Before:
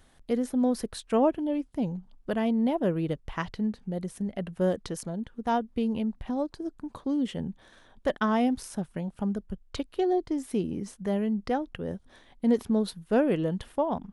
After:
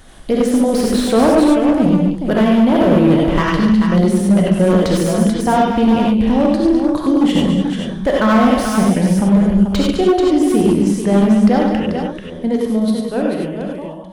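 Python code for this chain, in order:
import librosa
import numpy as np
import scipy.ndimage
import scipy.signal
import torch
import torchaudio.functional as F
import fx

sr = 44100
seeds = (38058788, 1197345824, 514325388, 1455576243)

p1 = fx.fade_out_tail(x, sr, length_s=4.28)
p2 = fx.over_compress(p1, sr, threshold_db=-30.0, ratio=-1.0)
p3 = p1 + F.gain(torch.from_numpy(p2), -2.0).numpy()
p4 = fx.rev_gated(p3, sr, seeds[0], gate_ms=120, shape='rising', drr_db=-1.0)
p5 = np.clip(p4, -10.0 ** (-16.5 / 20.0), 10.0 ** (-16.5 / 20.0))
p6 = p5 + fx.echo_multitap(p5, sr, ms=(143, 207, 437), db=(-9.5, -11.0, -7.5), dry=0)
p7 = fx.slew_limit(p6, sr, full_power_hz=120.0)
y = F.gain(torch.from_numpy(p7), 8.5).numpy()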